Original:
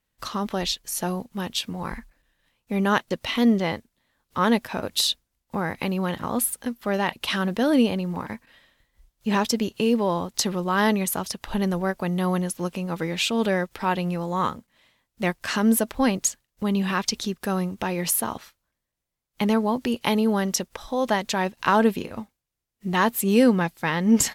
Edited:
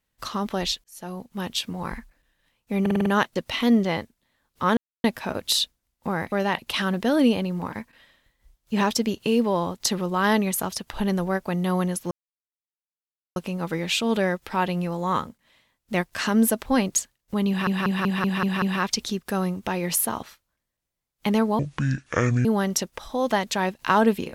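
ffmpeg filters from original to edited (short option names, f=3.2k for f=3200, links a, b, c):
-filter_complex "[0:a]asplit=18[a][b][c][d][e][f][g][h][i][j][k][l][m][n][o][p][q][r];[a]atrim=end=0.84,asetpts=PTS-STARTPTS,afade=t=out:st=0.836:d=0.004:c=hsin[s];[b]atrim=start=0.84:end=2.862,asetpts=PTS-STARTPTS,afade=t=in:d=0.62[t];[c]atrim=start=2.808:end=2.862[u];[d]atrim=start=2.808:end=2.862[v];[e]atrim=start=2.808:end=2.862[w];[f]atrim=start=2.808:end=2.862[x];[g]atrim=start=2.808:end=4.52,asetpts=PTS-STARTPTS,afade=t=out:st=1.708:d=0.004:c=hsin,apad=pad_dur=0.27[y];[h]atrim=start=4.52:end=5.802,asetpts=PTS-STARTPTS,afade=t=in:d=0.004:c=hsin[z];[i]atrim=start=6.858:end=12.65,asetpts=PTS-STARTPTS,afade=t=out:st=5.788:d=0.004:c=hsin,apad=pad_dur=1.25[aa];[j]atrim=start=12.65:end=16.962,asetpts=PTS-STARTPTS,afade=t=in:d=0.004:c=hsin[ab];[k]atrim=start=16.768:end=16.962[ac];[l]atrim=start=16.768:end=16.962[ad];[m]atrim=start=16.768:end=16.962[ae];[n]atrim=start=16.768:end=16.962[af];[o]atrim=start=16.768:end=16.962[ag];[p]atrim=start=16.768:end=19.744[ah];[q]atrim=start=19.74:end=20.23,asetpts=PTS-STARTPTS,asetrate=25137,aresample=44100[ai];[r]atrim=start=20.226[aj];[s][t]concat=n=2:v=0:a=1[ak];[ak][u]acrossfade=d=0.004:c1=hsin:c2=hsin[al];[al][v]acrossfade=d=0.004:c1=hsin:c2=hsin[am];[am][w]acrossfade=d=0.004:c1=hsin:c2=hsin[an];[an][x]acrossfade=d=0.004:c1=hsin:c2=hsin[ao];[y][z]concat=n=2:v=0:a=1[ap];[ao][ap]acrossfade=d=0.004:c1=hsin:c2=hsin[aq];[aa][ab]concat=n=2:v=0:a=1[ar];[aq][ar]acrossfade=d=0.004:c1=hsin:c2=hsin[as];[as][ac]acrossfade=d=0.004:c1=hsin:c2=hsin[at];[at][ad]acrossfade=d=0.004:c1=hsin:c2=hsin[au];[au][ae]acrossfade=d=0.004:c1=hsin:c2=hsin[av];[av][af]acrossfade=d=0.004:c1=hsin:c2=hsin[aw];[aw][ag]acrossfade=d=0.004:c1=hsin:c2=hsin[ax];[ax][ah]acrossfade=d=0.004:c1=hsin:c2=hsin[ay];[ay][ai]acrossfade=d=0.004:c1=hsin:c2=hsin[az];[az][aj]acrossfade=d=0.004:c1=hsin:c2=hsin"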